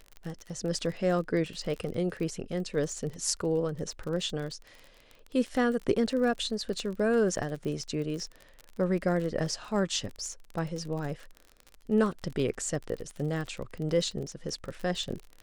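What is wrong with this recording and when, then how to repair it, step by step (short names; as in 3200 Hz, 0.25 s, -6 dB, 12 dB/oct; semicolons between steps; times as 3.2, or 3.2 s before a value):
crackle 36/s -35 dBFS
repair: de-click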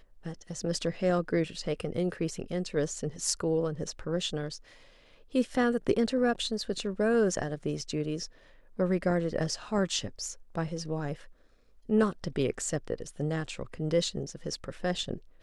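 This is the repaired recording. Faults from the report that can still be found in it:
none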